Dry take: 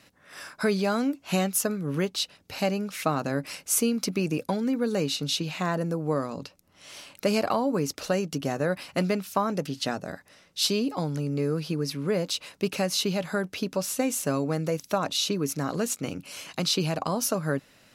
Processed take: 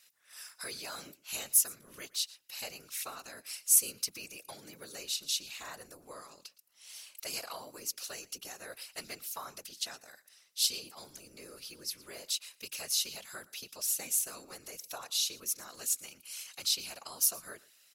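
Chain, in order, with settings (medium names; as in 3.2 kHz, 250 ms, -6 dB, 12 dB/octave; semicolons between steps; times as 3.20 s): differentiator; whisper effect; delay 115 ms -21.5 dB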